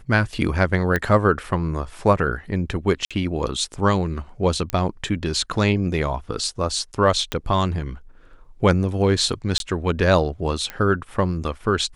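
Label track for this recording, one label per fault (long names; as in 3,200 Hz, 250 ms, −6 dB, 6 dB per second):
0.960000	0.960000	click −9 dBFS
3.050000	3.110000	drop-out 56 ms
4.700000	4.700000	click −9 dBFS
7.320000	7.320000	click −9 dBFS
9.580000	9.600000	drop-out 22 ms
10.700000	10.700000	click −14 dBFS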